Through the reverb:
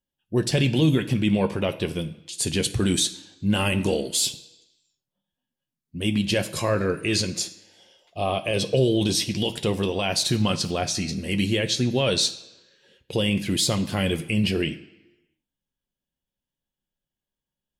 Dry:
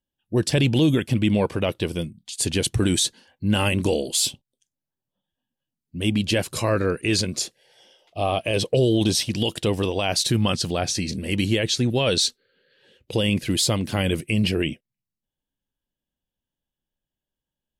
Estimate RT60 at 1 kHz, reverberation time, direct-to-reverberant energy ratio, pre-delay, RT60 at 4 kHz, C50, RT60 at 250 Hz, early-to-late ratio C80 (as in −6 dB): 1.1 s, 1.0 s, 6.0 dB, 3 ms, 0.95 s, 14.5 dB, 0.95 s, 17.0 dB